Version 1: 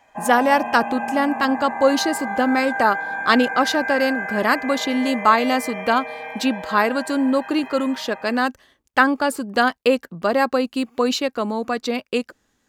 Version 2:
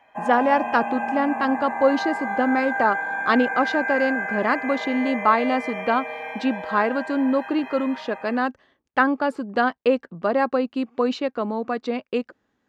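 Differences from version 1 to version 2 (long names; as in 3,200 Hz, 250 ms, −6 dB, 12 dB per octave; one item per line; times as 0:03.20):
speech: add head-to-tape spacing loss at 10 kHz 27 dB
master: add high-pass filter 150 Hz 6 dB per octave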